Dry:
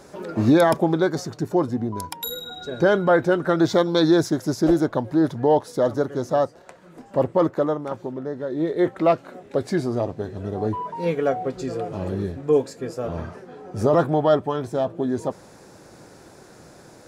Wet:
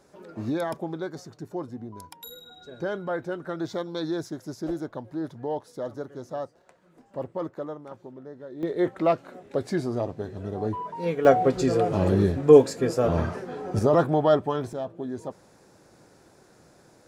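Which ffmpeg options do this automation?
-af "asetnsamples=n=441:p=0,asendcmd='8.63 volume volume -4dB;11.25 volume volume 5.5dB;13.79 volume volume -2dB;14.73 volume volume -9dB',volume=-12.5dB"

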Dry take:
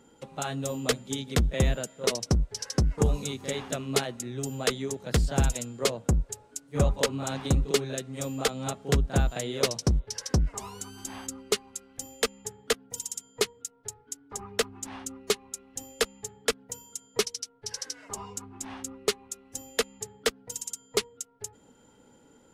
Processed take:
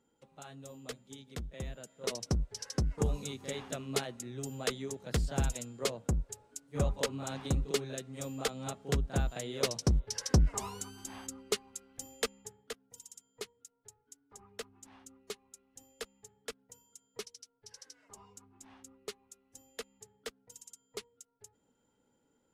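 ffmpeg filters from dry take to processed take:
-af "volume=0.5dB,afade=t=in:st=1.75:d=0.5:silence=0.316228,afade=t=in:st=9.5:d=1.1:silence=0.421697,afade=t=out:st=10.6:d=0.39:silence=0.473151,afade=t=out:st=12.18:d=0.53:silence=0.298538"

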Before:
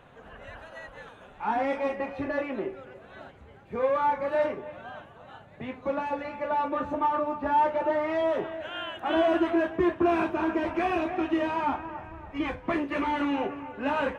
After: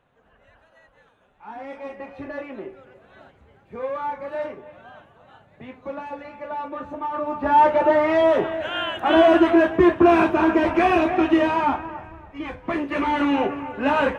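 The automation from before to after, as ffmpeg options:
-af "volume=19.5dB,afade=t=in:st=1.42:d=0.81:silence=0.354813,afade=t=in:st=7.08:d=0.6:silence=0.251189,afade=t=out:st=11.32:d=1.05:silence=0.251189,afade=t=in:st=12.37:d=0.99:silence=0.298538"

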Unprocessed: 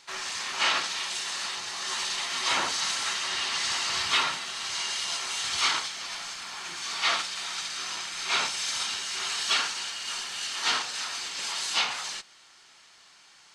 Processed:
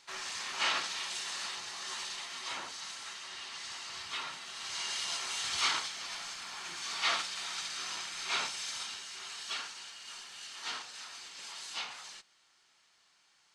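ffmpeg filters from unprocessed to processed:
-af "volume=3.5dB,afade=t=out:st=1.45:d=1.16:silence=0.375837,afade=t=in:st=4.19:d=0.77:silence=0.334965,afade=t=out:st=7.98:d=1.23:silence=0.398107"

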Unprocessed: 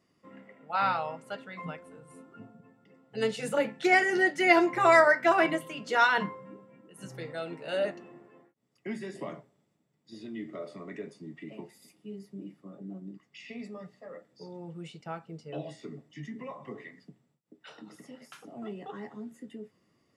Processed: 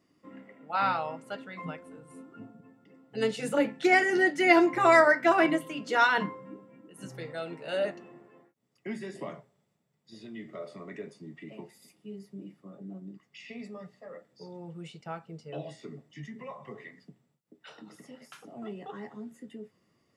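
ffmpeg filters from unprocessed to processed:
-af "asetnsamples=n=441:p=0,asendcmd='7.1 equalizer g -1.5;9.31 equalizer g -11.5;10.72 equalizer g -4;16.24 equalizer g -13;16.82 equalizer g -2.5',equalizer=f=290:t=o:w=0.36:g=7.5"

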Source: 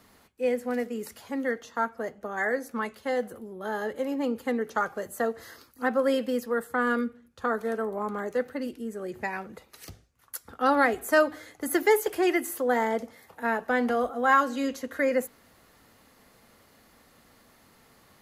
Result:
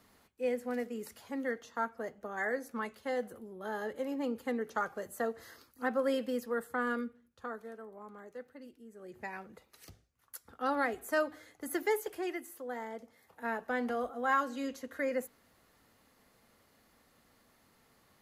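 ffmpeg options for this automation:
-af "volume=9dB,afade=t=out:st=6.68:d=1.08:silence=0.266073,afade=t=in:st=8.9:d=0.4:silence=0.375837,afade=t=out:st=11.89:d=0.58:silence=0.501187,afade=t=in:st=13.02:d=0.46:silence=0.446684"

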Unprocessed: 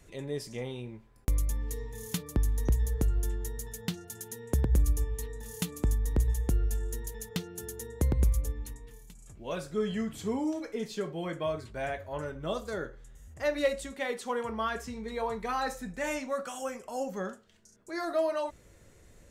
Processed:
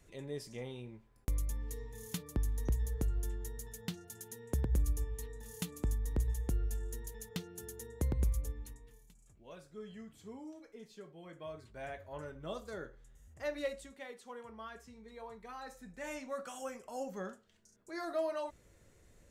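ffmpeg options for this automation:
-af "volume=11dB,afade=t=out:st=8.5:d=1.06:silence=0.298538,afade=t=in:st=11.23:d=0.83:silence=0.375837,afade=t=out:st=13.5:d=0.63:silence=0.446684,afade=t=in:st=15.65:d=0.86:silence=0.354813"

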